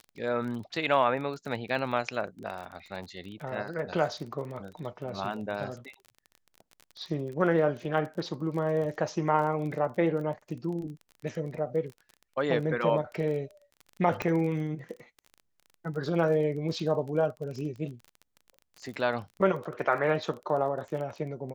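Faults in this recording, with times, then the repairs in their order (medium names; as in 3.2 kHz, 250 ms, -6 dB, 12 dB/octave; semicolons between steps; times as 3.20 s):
crackle 27 per s -37 dBFS
14.22 s: pop -16 dBFS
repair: de-click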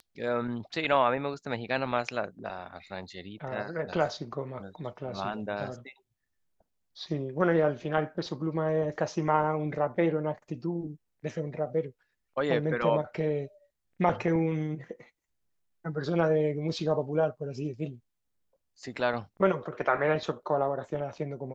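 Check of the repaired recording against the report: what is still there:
nothing left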